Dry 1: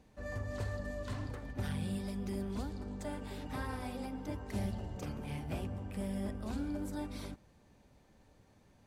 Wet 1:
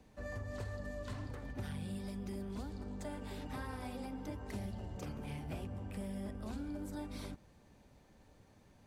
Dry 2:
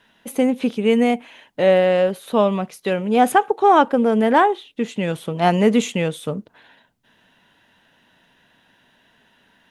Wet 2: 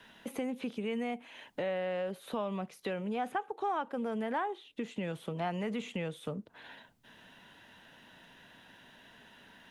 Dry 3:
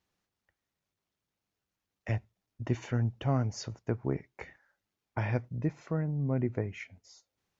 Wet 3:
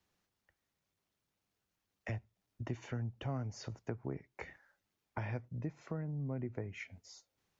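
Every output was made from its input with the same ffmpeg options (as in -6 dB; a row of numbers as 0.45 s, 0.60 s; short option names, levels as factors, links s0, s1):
-filter_complex "[0:a]acrossover=split=3300[s0][s1];[s1]acompressor=threshold=0.00631:ratio=4:attack=1:release=60[s2];[s0][s2]amix=inputs=2:normalize=0,acrossover=split=150|680[s3][s4][s5];[s4]alimiter=limit=0.126:level=0:latency=1[s6];[s3][s6][s5]amix=inputs=3:normalize=0,acompressor=threshold=0.00794:ratio=2.5,volume=1.12"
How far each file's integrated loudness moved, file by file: -3.5 LU, -18.5 LU, -9.0 LU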